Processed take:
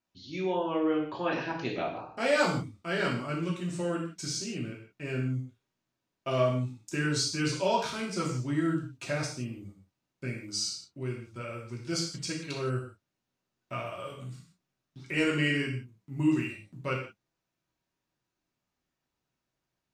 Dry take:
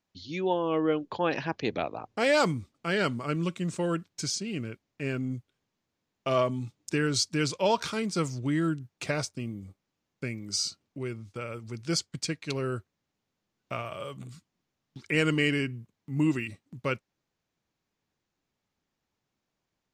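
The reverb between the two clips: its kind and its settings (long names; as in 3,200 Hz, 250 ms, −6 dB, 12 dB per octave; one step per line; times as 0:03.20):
reverb whose tail is shaped and stops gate 200 ms falling, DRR −4 dB
level −7 dB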